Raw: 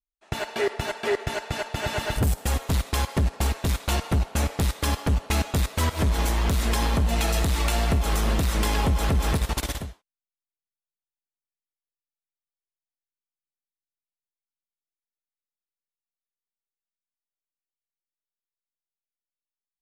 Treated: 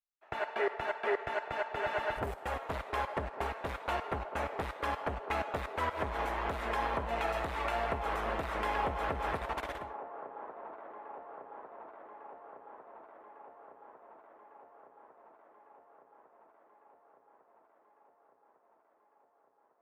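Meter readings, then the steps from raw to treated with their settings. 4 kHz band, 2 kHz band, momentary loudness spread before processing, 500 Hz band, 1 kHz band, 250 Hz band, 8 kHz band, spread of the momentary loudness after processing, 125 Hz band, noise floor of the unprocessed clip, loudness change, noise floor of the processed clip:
-15.0 dB, -5.0 dB, 6 LU, -5.0 dB, -2.0 dB, -14.5 dB, -25.0 dB, 18 LU, -20.0 dB, under -85 dBFS, -10.5 dB, -70 dBFS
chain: three-band isolator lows -18 dB, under 430 Hz, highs -24 dB, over 2300 Hz; on a send: band-limited delay 1.152 s, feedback 69%, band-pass 600 Hz, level -11 dB; on the sum: gain -2 dB

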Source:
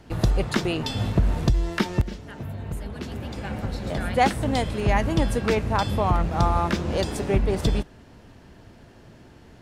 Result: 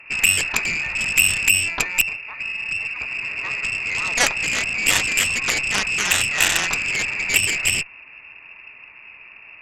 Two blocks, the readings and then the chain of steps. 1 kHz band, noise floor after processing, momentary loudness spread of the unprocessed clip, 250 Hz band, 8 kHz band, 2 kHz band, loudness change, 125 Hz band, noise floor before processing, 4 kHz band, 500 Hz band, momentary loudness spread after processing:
-5.5 dB, -44 dBFS, 12 LU, -12.0 dB, +20.5 dB, +15.5 dB, +6.0 dB, -13.5 dB, -50 dBFS, +12.0 dB, -10.0 dB, 8 LU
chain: inverted band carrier 2700 Hz; added harmonics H 7 -8 dB, 8 -22 dB, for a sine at -5.5 dBFS

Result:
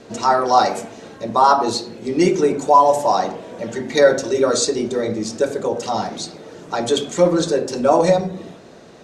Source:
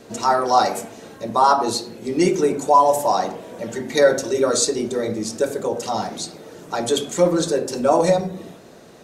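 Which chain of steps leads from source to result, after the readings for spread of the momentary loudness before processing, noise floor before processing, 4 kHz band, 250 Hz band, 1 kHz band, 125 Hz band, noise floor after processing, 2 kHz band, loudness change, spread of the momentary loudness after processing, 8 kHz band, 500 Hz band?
14 LU, -44 dBFS, +1.5 dB, +2.0 dB, +2.0 dB, +2.0 dB, -42 dBFS, +2.0 dB, +2.0 dB, 14 LU, -1.5 dB, +2.0 dB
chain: LPF 6800 Hz 12 dB/oct; gain +2 dB

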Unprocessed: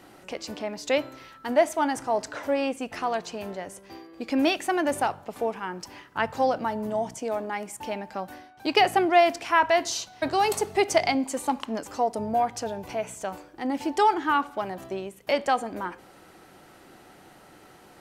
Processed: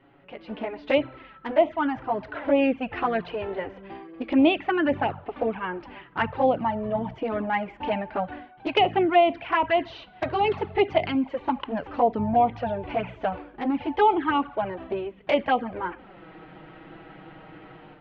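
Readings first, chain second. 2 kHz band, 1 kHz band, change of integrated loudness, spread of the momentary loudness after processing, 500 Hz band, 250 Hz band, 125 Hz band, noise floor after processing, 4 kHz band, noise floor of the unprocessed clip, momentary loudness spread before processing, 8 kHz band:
-0.5 dB, +0.5 dB, +1.0 dB, 13 LU, +1.5 dB, +3.5 dB, +6.0 dB, -51 dBFS, -2.0 dB, -52 dBFS, 15 LU, under -30 dB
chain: steep low-pass 3200 Hz 36 dB/oct; low shelf 200 Hz +5.5 dB; AGC gain up to 13 dB; envelope flanger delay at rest 7.5 ms, full sweep at -9 dBFS; gain -5 dB

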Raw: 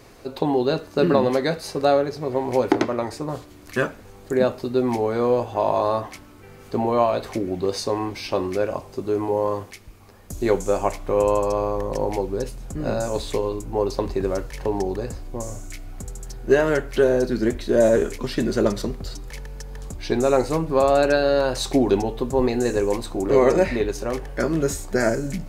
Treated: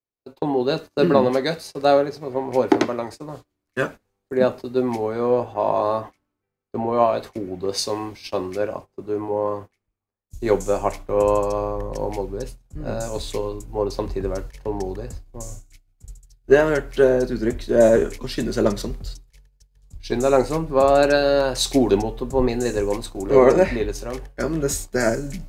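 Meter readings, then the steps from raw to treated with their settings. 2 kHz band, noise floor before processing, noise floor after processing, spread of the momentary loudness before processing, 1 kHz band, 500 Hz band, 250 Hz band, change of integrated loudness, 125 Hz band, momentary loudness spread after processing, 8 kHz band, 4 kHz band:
+0.5 dB, -45 dBFS, -79 dBFS, 14 LU, +0.5 dB, +1.0 dB, 0.0 dB, +1.0 dB, -1.0 dB, 15 LU, +2.0 dB, +2.0 dB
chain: gate -32 dBFS, range -21 dB; three-band expander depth 70%

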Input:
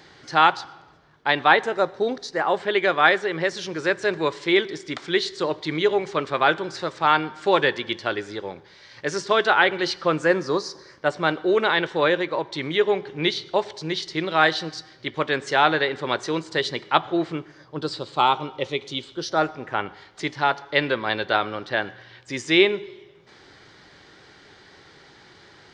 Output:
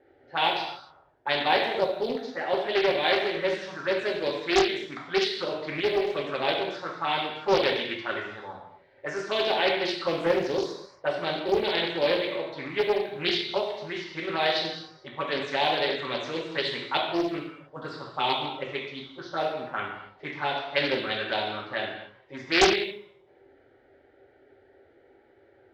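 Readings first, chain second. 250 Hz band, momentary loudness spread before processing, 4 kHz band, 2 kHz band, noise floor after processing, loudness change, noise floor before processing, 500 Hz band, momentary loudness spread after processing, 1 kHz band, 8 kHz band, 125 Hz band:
-5.0 dB, 13 LU, -1.5 dB, -6.5 dB, -60 dBFS, -4.5 dB, -51 dBFS, -3.5 dB, 13 LU, -6.5 dB, n/a, -7.5 dB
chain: low-pass opened by the level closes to 860 Hz, open at -19 dBFS; dynamic EQ 1800 Hz, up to -4 dB, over -32 dBFS, Q 0.86; companded quantiser 8-bit; envelope phaser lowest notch 170 Hz, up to 1300 Hz, full sweep at -20.5 dBFS; low-pass opened by the level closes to 3000 Hz, open at -19.5 dBFS; low shelf 270 Hz -10 dB; non-linear reverb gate 0.31 s falling, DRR -2 dB; Doppler distortion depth 0.6 ms; gain -2 dB

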